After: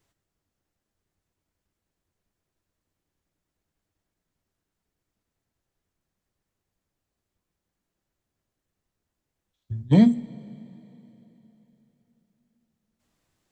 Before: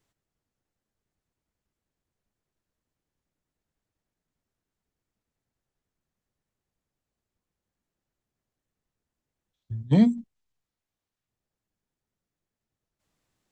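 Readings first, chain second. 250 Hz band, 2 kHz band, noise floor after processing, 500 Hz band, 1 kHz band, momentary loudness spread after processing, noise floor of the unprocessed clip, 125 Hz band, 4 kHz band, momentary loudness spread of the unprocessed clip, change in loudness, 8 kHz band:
+3.0 dB, +3.0 dB, -84 dBFS, +3.0 dB, +3.5 dB, 19 LU, under -85 dBFS, +3.0 dB, +3.0 dB, 18 LU, +2.0 dB, n/a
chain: two-slope reverb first 0.29 s, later 3.7 s, from -18 dB, DRR 11.5 dB; gain +3 dB

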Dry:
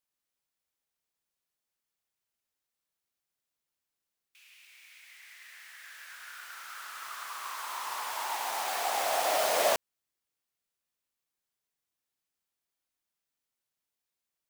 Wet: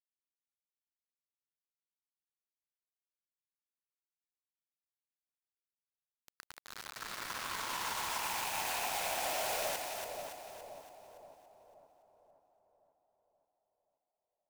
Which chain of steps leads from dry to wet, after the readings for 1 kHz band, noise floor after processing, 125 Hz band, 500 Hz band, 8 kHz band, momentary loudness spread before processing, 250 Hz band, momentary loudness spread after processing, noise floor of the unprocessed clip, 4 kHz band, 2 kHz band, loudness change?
-6.0 dB, under -85 dBFS, n/a, -9.0 dB, -3.0 dB, 21 LU, -1.5 dB, 19 LU, under -85 dBFS, -3.0 dB, -3.5 dB, -5.5 dB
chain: rattling part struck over -57 dBFS, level -26 dBFS; low-pass opened by the level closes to 680 Hz, open at -31 dBFS; HPF 59 Hz 24 dB/oct; in parallel at -1.5 dB: compressor, threshold -43 dBFS, peak gain reduction 19 dB; on the sum: limiter -26.5 dBFS, peak gain reduction 12 dB; notch 1200 Hz, Q 8.5; bit-crush 6-bit; split-band echo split 930 Hz, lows 0.527 s, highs 0.283 s, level -5 dB; gain -3 dB

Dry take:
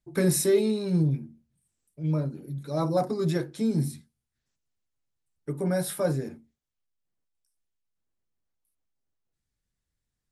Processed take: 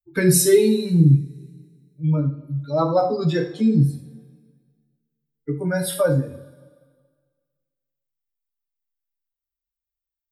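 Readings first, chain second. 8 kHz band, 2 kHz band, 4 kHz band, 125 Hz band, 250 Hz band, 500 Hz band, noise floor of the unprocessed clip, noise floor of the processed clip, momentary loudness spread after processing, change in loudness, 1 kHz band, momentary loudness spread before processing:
+8.5 dB, +9.5 dB, +7.5 dB, +9.0 dB, +7.0 dB, +7.0 dB, -84 dBFS, under -85 dBFS, 15 LU, +7.5 dB, +8.0 dB, 11 LU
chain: per-bin expansion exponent 2; two-slope reverb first 0.42 s, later 1.7 s, from -22 dB, DRR 2 dB; in parallel at +1 dB: compressor, threshold -37 dBFS, peak gain reduction 17.5 dB; on the sum: gain +7.5 dB

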